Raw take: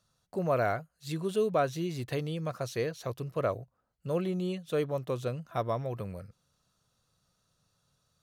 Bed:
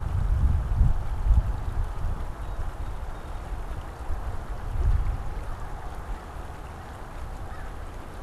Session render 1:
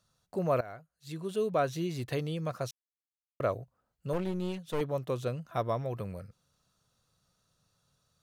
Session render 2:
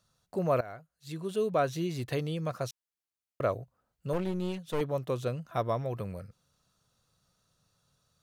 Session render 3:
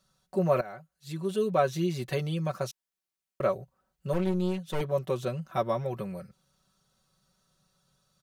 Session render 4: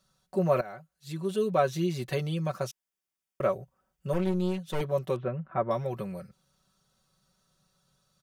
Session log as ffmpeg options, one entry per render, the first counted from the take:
ffmpeg -i in.wav -filter_complex "[0:a]asettb=1/sr,asplit=3[link_01][link_02][link_03];[link_01]atrim=end=4.134[link_04];[link_02]atrim=start=4.13:end=4.81,asetpts=PTS-STARTPTS,afade=type=in:duration=0.004:curve=qsin,afade=type=out:start_time=0.676:duration=0.004:curve=qsin,aeval=exprs='clip(val(0),-1,0.0112)':channel_layout=same[link_05];[link_03]atrim=start=4.806[link_06];[link_04][link_05]acrossfade=duration=0.004:curve1=hsin:curve2=qsin[link_07];[link_07][link_06]acrossfade=duration=0.004:curve1=qsin:curve2=hsin,asplit=4[link_08][link_09][link_10][link_11];[link_08]atrim=end=0.61,asetpts=PTS-STARTPTS,afade=type=out:start_time=0.606:duration=0.004:curve=hsin:silence=0.112202[link_12];[link_09]atrim=start=0.61:end=2.71,asetpts=PTS-STARTPTS,afade=type=in:duration=1.13:silence=0.112202,afade=type=out:start_time=2.096:duration=0.004:curve=hsin[link_13];[link_10]atrim=start=2.71:end=3.4,asetpts=PTS-STARTPTS,volume=0[link_14];[link_11]atrim=start=3.4,asetpts=PTS-STARTPTS,afade=type=in:duration=0.004:curve=hsin[link_15];[link_12][link_13][link_14][link_15]concat=n=4:v=0:a=1" out.wav
ffmpeg -i in.wav -af "volume=1dB" out.wav
ffmpeg -i in.wav -af "aecho=1:1:5.3:0.77" out.wav
ffmpeg -i in.wav -filter_complex "[0:a]asettb=1/sr,asplit=3[link_01][link_02][link_03];[link_01]atrim=end=2.654[link_04];[link_02]atrim=start=2.65:end=4.2,asetpts=PTS-STARTPTS,afade=type=in:duration=0.004:curve=qsin,afade=type=out:start_time=1.546:duration=0.004:curve=qsin,bandreject=frequency=4100:width=7[link_05];[link_03]atrim=start=4.196[link_06];[link_04][link_05]acrossfade=duration=0.004:curve1=hsin:curve2=qsin[link_07];[link_07][link_06]acrossfade=duration=0.004:curve1=qsin:curve2=hsin,asettb=1/sr,asplit=3[link_08][link_09][link_10];[link_08]atrim=end=5.164[link_11];[link_09]atrim=start=5.16:end=5.71,asetpts=PTS-STARTPTS,afade=type=in:duration=0.004:curve=qsin,afade=type=out:start_time=0.546:duration=0.004:curve=qsin,lowpass=frequency=2100:width=0.5412,lowpass=frequency=2100:width=1.3066[link_12];[link_10]atrim=start=5.706[link_13];[link_11][link_12]acrossfade=duration=0.004:curve1=hsin:curve2=qsin[link_14];[link_14][link_13]acrossfade=duration=0.004:curve1=qsin:curve2=hsin" out.wav

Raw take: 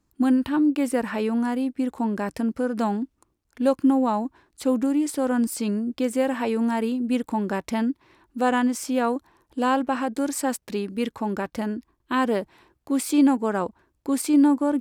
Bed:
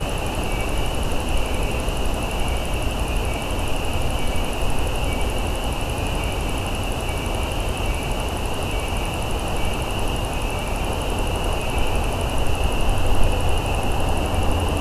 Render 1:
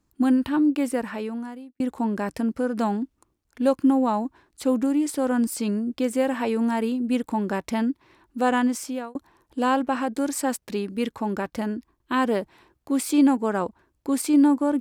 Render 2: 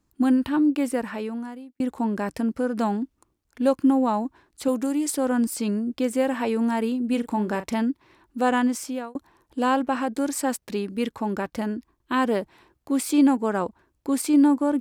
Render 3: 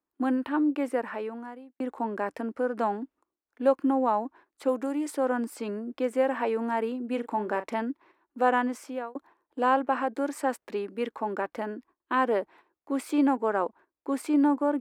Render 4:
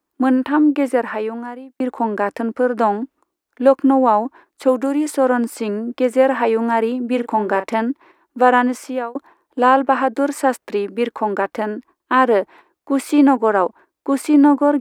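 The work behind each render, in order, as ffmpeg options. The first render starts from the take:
ffmpeg -i in.wav -filter_complex "[0:a]asplit=3[link_01][link_02][link_03];[link_01]atrim=end=1.8,asetpts=PTS-STARTPTS,afade=type=out:start_time=0.74:duration=1.06[link_04];[link_02]atrim=start=1.8:end=9.15,asetpts=PTS-STARTPTS,afade=type=in:duration=0.004:curve=hsin,afade=type=out:start_time=6.95:duration=0.4[link_05];[link_03]atrim=start=9.15,asetpts=PTS-STARTPTS,afade=type=in:duration=0.004:curve=hsin[link_06];[link_04][link_05][link_06]concat=n=3:v=0:a=1" out.wav
ffmpeg -i in.wav -filter_complex "[0:a]asettb=1/sr,asplit=3[link_01][link_02][link_03];[link_01]atrim=end=4.684[link_04];[link_02]atrim=start=4.68:end=5.17,asetpts=PTS-STARTPTS,afade=type=in:duration=0.004:curve=qsin,afade=type=out:start_time=0.486:duration=0.004:curve=qsin,bass=frequency=250:gain=-7,treble=frequency=4000:gain=6[link_05];[link_03]atrim=start=5.166[link_06];[link_04][link_05]acrossfade=duration=0.004:curve1=hsin:curve2=qsin[link_07];[link_07][link_06]acrossfade=duration=0.004:curve1=qsin:curve2=hsin,asettb=1/sr,asplit=3[link_08][link_09][link_10];[link_08]atrim=end=7.094[link_11];[link_09]atrim=start=7.09:end=7.76,asetpts=PTS-STARTPTS,afade=type=in:duration=0.004:curve=qsin,afade=type=out:start_time=0.666:duration=0.004:curve=qsin,asplit=2[link_12][link_13];[link_13]adelay=38,volume=-11dB[link_14];[link_12][link_14]amix=inputs=2:normalize=0,atrim=end_sample=29547[link_15];[link_10]atrim=start=7.756[link_16];[link_11][link_15]acrossfade=duration=0.004:curve1=hsin:curve2=qsin[link_17];[link_17][link_16]acrossfade=duration=0.004:curve1=qsin:curve2=hsin" out.wav
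ffmpeg -i in.wav -filter_complex "[0:a]agate=range=-10dB:threshold=-48dB:ratio=16:detection=peak,acrossover=split=290 2400:gain=0.0708 1 0.2[link_01][link_02][link_03];[link_01][link_02][link_03]amix=inputs=3:normalize=0" out.wav
ffmpeg -i in.wav -af "volume=11dB,alimiter=limit=-2dB:level=0:latency=1" out.wav

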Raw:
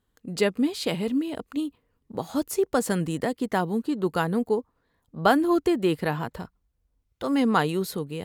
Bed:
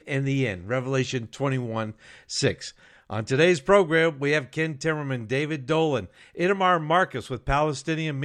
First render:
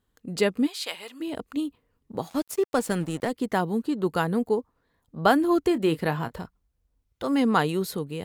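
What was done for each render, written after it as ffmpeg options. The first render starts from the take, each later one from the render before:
ffmpeg -i in.wav -filter_complex "[0:a]asplit=3[link_01][link_02][link_03];[link_01]afade=type=out:start_time=0.66:duration=0.02[link_04];[link_02]highpass=990,afade=type=in:start_time=0.66:duration=0.02,afade=type=out:start_time=1.2:duration=0.02[link_05];[link_03]afade=type=in:start_time=1.2:duration=0.02[link_06];[link_04][link_05][link_06]amix=inputs=3:normalize=0,asplit=3[link_07][link_08][link_09];[link_07]afade=type=out:start_time=2.28:duration=0.02[link_10];[link_08]aeval=exprs='sgn(val(0))*max(abs(val(0))-0.0112,0)':channel_layout=same,afade=type=in:start_time=2.28:duration=0.02,afade=type=out:start_time=3.3:duration=0.02[link_11];[link_09]afade=type=in:start_time=3.3:duration=0.02[link_12];[link_10][link_11][link_12]amix=inputs=3:normalize=0,asettb=1/sr,asplit=3[link_13][link_14][link_15];[link_13]atrim=end=5.684[link_16];[link_14]atrim=start=5.68:end=6.4,asetpts=PTS-STARTPTS,afade=type=in:duration=0.004:curve=qsin,afade=type=out:start_time=0.716:duration=0.004:curve=qsin,asplit=2[link_17][link_18];[link_18]adelay=25,volume=-13dB[link_19];[link_17][link_19]amix=inputs=2:normalize=0,atrim=end_sample=31752[link_20];[link_15]atrim=start=6.396[link_21];[link_16][link_20]acrossfade=duration=0.004:curve1=hsin:curve2=qsin[link_22];[link_22][link_21]acrossfade=duration=0.004:curve1=qsin:curve2=hsin" out.wav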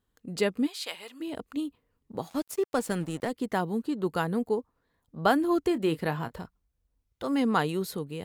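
ffmpeg -i in.wav -af "volume=-3.5dB" out.wav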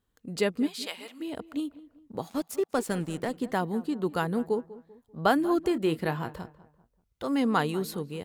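ffmpeg -i in.wav -filter_complex "[0:a]asplit=2[link_01][link_02];[link_02]adelay=195,lowpass=frequency=1800:poles=1,volume=-17.5dB,asplit=2[link_03][link_04];[link_04]adelay=195,lowpass=frequency=1800:poles=1,volume=0.4,asplit=2[link_05][link_06];[link_06]adelay=195,lowpass=frequency=1800:poles=1,volume=0.4[link_07];[link_01][link_03][link_05][link_07]amix=inputs=4:normalize=0" out.wav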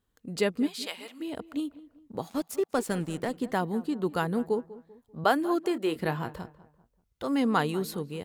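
ffmpeg -i in.wav -filter_complex "[0:a]asettb=1/sr,asplit=3[link_01][link_02][link_03];[link_01]atrim=end=5.244[link_04];[link_02]atrim=start=5.24:end=5.96,asetpts=PTS-STARTPTS,afade=type=in:duration=0.004:curve=qsin,afade=type=out:start_time=0.716:duration=0.004:curve=qsin,highpass=300[link_05];[link_03]atrim=start=5.956[link_06];[link_04][link_05]acrossfade=duration=0.004:curve1=hsin:curve2=qsin[link_07];[link_07][link_06]acrossfade=duration=0.004:curve1=qsin:curve2=hsin" out.wav

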